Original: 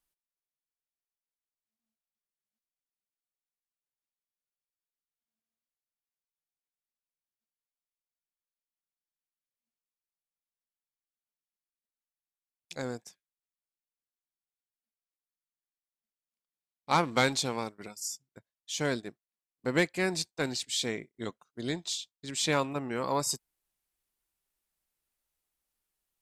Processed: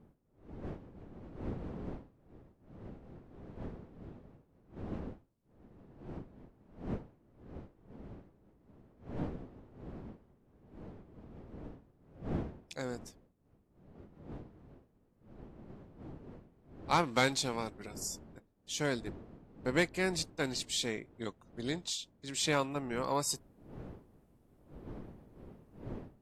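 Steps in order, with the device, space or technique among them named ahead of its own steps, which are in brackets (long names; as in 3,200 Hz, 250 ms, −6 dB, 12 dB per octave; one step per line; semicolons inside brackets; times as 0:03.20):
smartphone video outdoors (wind on the microphone 300 Hz −45 dBFS; automatic gain control gain up to 6 dB; level −9 dB; AAC 64 kbit/s 44,100 Hz)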